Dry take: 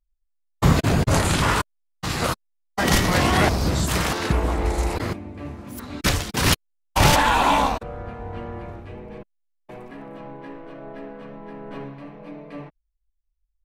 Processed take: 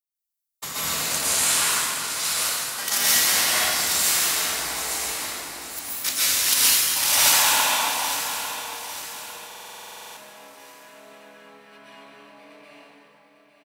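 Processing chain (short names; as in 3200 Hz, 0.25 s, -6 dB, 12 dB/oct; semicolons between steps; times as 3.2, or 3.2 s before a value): differentiator; on a send: feedback echo 0.851 s, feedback 41%, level -11 dB; on the sum: plate-style reverb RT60 2.7 s, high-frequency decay 0.75×, pre-delay 0.11 s, DRR -9.5 dB; stuck buffer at 9.47, samples 2048, times 14; gain +1 dB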